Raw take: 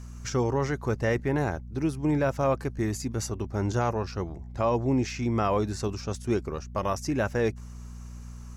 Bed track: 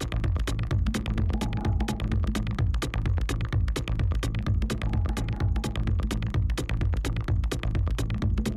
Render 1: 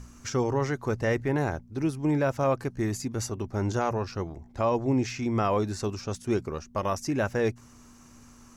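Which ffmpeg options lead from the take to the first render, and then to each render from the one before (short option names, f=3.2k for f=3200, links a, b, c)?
-af "bandreject=f=60:t=h:w=4,bandreject=f=120:t=h:w=4,bandreject=f=180:t=h:w=4"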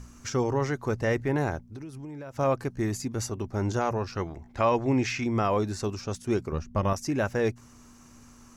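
-filter_complex "[0:a]asettb=1/sr,asplit=3[a][b][c];[a]atrim=end=1.604[d];[b]atrim=start=1.6:end=2.39,asetpts=PTS-STARTPTS,afade=t=in:d=0.004:c=qsin,afade=t=out:st=0.786:d=0.004:c=qsin,acompressor=threshold=-36dB:ratio=16:attack=3.2:release=140:knee=1:detection=peak[e];[c]atrim=start=2.386[f];[d][e]acrossfade=d=0.004:c1=hsin:c2=qsin[g];[g][f]acrossfade=d=0.004:c1=qsin:c2=hsin,asettb=1/sr,asplit=3[h][i][j];[h]atrim=end=4.154[k];[i]atrim=start=4.15:end=5.24,asetpts=PTS-STARTPTS,afade=t=in:d=0.004:c=qsin,afade=t=out:st=1.086:d=0.004:c=qsin,equalizer=f=2.1k:t=o:w=2:g=7.5[l];[j]atrim=start=5.236[m];[k][l]acrossfade=d=0.004:c1=hsin:c2=qsin[n];[n][m]acrossfade=d=0.004:c1=qsin:c2=hsin,asettb=1/sr,asplit=3[o][p][q];[o]atrim=end=6.524[r];[p]atrim=start=6.52:end=6.93,asetpts=PTS-STARTPTS,afade=t=in:d=0.004:c=qsin,afade=t=out:st=0.406:d=0.004:c=qsin,bass=f=250:g=9,treble=f=4k:g=-5[s];[q]atrim=start=6.926[t];[r][s]acrossfade=d=0.004:c1=hsin:c2=qsin[u];[u][t]acrossfade=d=0.004:c1=qsin:c2=hsin"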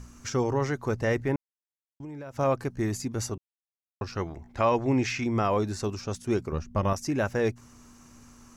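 -filter_complex "[0:a]asplit=5[a][b][c][d][e];[a]atrim=end=1.36,asetpts=PTS-STARTPTS,afade=t=out:st=1.356:d=0.004:c=hsin[f];[b]atrim=start=1.36:end=2,asetpts=PTS-STARTPTS,volume=0[g];[c]atrim=start=2:end=3.38,asetpts=PTS-STARTPTS,afade=t=in:d=0.004:c=hsin,afade=t=out:st=1.376:d=0.004:c=hsin[h];[d]atrim=start=3.38:end=4.01,asetpts=PTS-STARTPTS,volume=0[i];[e]atrim=start=4.01,asetpts=PTS-STARTPTS,afade=t=in:d=0.004:c=hsin[j];[f][g][h][i][j]concat=n=5:v=0:a=1"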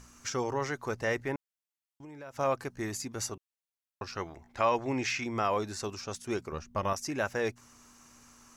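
-af "lowshelf=f=410:g=-11.5"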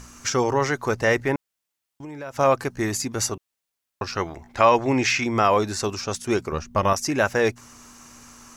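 -af "volume=10.5dB"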